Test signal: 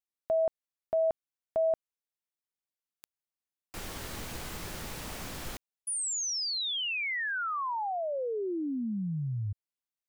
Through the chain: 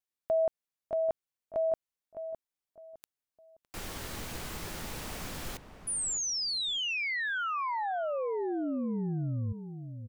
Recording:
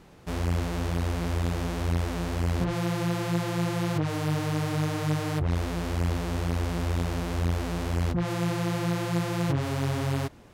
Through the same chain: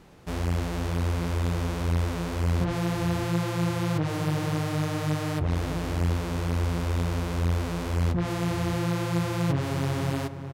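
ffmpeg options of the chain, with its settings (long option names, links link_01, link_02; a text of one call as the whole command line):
ffmpeg -i in.wav -filter_complex "[0:a]asplit=2[link_01][link_02];[link_02]adelay=609,lowpass=frequency=1500:poles=1,volume=-9.5dB,asplit=2[link_03][link_04];[link_04]adelay=609,lowpass=frequency=1500:poles=1,volume=0.31,asplit=2[link_05][link_06];[link_06]adelay=609,lowpass=frequency=1500:poles=1,volume=0.31[link_07];[link_01][link_03][link_05][link_07]amix=inputs=4:normalize=0" out.wav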